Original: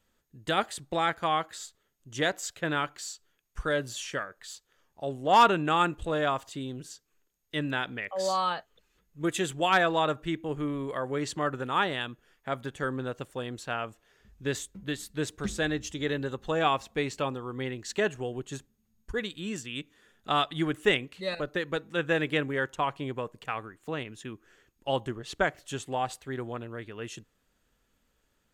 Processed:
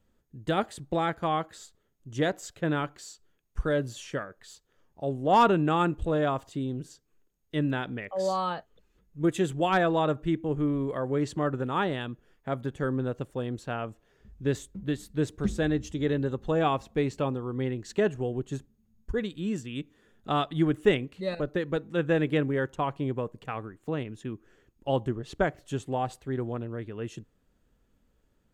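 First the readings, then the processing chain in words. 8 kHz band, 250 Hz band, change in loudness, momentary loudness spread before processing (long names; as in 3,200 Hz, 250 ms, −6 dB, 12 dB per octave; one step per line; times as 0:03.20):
−6.5 dB, +5.0 dB, +1.0 dB, 14 LU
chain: tilt shelving filter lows +6.5 dB, about 740 Hz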